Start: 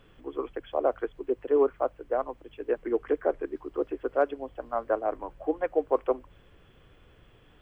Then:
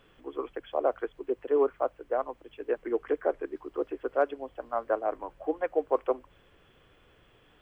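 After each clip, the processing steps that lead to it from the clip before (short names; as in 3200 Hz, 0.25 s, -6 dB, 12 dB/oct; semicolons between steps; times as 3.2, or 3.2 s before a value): low shelf 230 Hz -8 dB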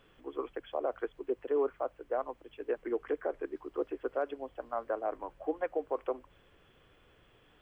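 limiter -20 dBFS, peak gain reduction 6.5 dB; gain -2.5 dB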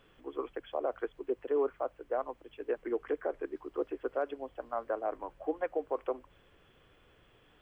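nothing audible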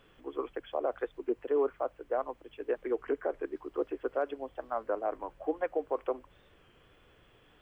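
record warp 33 1/3 rpm, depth 100 cents; gain +1.5 dB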